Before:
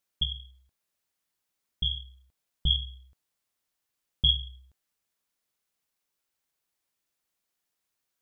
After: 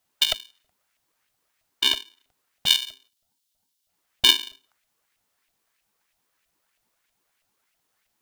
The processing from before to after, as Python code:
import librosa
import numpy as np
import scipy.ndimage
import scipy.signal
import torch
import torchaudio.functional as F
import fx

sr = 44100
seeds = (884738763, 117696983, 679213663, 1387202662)

y = fx.filter_lfo_highpass(x, sr, shape='saw_up', hz=3.1, low_hz=290.0, high_hz=2500.0, q=5.2)
y = fx.spec_erase(y, sr, start_s=3.08, length_s=0.81, low_hz=640.0, high_hz=3100.0)
y = y * np.sign(np.sin(2.0 * np.pi * 330.0 * np.arange(len(y)) / sr))
y = y * 10.0 ** (7.0 / 20.0)